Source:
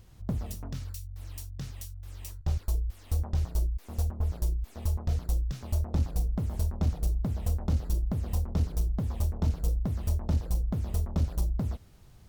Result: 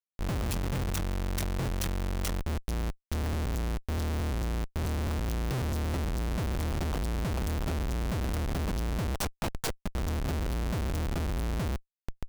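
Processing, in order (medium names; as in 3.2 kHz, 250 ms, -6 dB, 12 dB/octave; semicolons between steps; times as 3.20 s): 9.16–9.95 s: high-pass 1.2 kHz 12 dB/octave; Schmitt trigger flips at -43.5 dBFS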